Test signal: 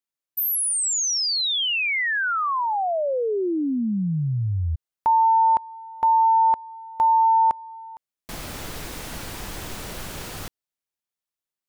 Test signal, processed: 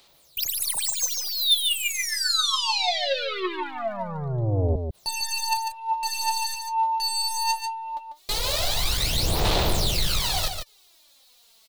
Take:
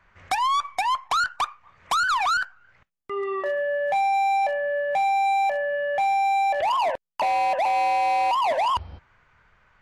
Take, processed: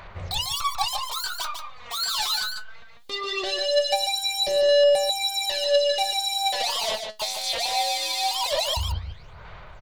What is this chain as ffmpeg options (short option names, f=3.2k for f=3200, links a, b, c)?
-filter_complex "[0:a]aeval=exprs='(tanh(14.1*val(0)+0.1)-tanh(0.1))/14.1':c=same,asplit=2[a][b];[b]aeval=exprs='0.0794*sin(PI/2*3.55*val(0)/0.0794)':c=same,volume=-6dB[c];[a][c]amix=inputs=2:normalize=0,aphaser=in_gain=1:out_gain=1:delay=4.7:decay=0.76:speed=0.21:type=sinusoidal,equalizer=f=250:t=o:w=0.67:g=-9,equalizer=f=630:t=o:w=0.67:g=4,equalizer=f=1.6k:t=o:w=0.67:g=-6,equalizer=f=4k:t=o:w=0.67:g=12,aecho=1:1:146:0.473,acompressor=mode=upward:threshold=-34dB:ratio=2.5:attack=0.79:release=31:knee=2.83:detection=peak,volume=-5dB"